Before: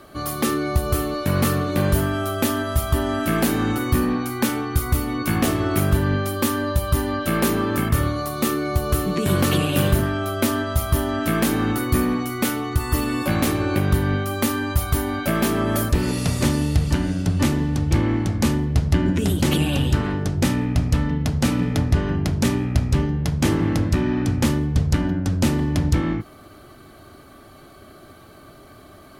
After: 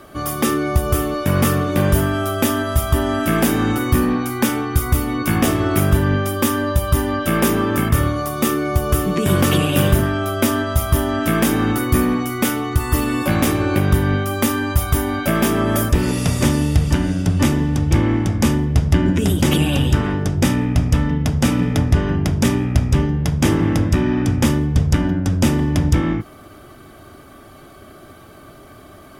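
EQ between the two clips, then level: Butterworth band-stop 4200 Hz, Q 7.9; +3.5 dB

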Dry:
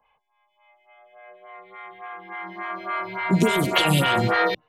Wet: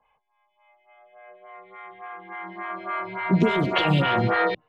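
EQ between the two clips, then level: air absorption 240 m; 0.0 dB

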